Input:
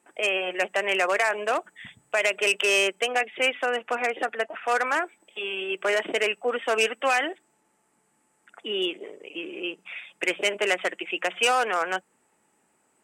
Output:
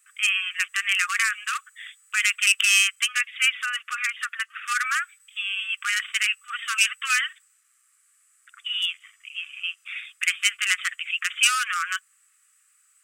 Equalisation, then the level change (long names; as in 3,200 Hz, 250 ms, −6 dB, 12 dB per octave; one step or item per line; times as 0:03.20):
linear-phase brick-wall high-pass 1,100 Hz
high-shelf EQ 3,500 Hz +11.5 dB
0.0 dB